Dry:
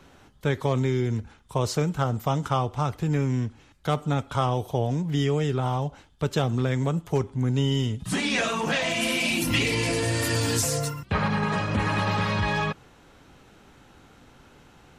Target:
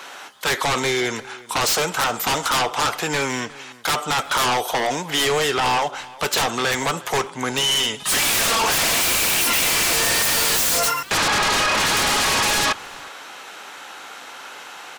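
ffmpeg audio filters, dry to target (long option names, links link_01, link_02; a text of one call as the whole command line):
ffmpeg -i in.wav -filter_complex "[0:a]highpass=840,asplit=2[link_01][link_02];[link_02]aeval=exprs='0.224*sin(PI/2*10*val(0)/0.224)':channel_layout=same,volume=-3dB[link_03];[link_01][link_03]amix=inputs=2:normalize=0,asplit=2[link_04][link_05];[link_05]adelay=361.5,volume=-20dB,highshelf=frequency=4000:gain=-8.13[link_06];[link_04][link_06]amix=inputs=2:normalize=0,volume=-1dB" out.wav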